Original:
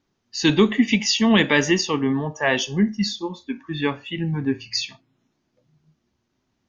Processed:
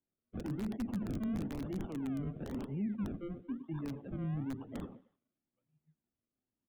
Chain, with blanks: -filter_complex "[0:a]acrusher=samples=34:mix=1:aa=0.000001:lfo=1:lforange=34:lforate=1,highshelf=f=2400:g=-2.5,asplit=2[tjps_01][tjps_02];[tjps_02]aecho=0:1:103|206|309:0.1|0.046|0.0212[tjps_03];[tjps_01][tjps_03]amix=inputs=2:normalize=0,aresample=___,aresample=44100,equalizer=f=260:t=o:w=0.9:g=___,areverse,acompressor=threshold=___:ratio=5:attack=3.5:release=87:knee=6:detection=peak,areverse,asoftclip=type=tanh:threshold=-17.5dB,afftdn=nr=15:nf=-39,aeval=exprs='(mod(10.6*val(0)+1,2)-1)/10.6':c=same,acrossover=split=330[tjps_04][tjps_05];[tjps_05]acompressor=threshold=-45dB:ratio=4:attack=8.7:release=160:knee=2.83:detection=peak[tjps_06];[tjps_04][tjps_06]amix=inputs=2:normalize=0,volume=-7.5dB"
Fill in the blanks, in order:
8000, 5, -24dB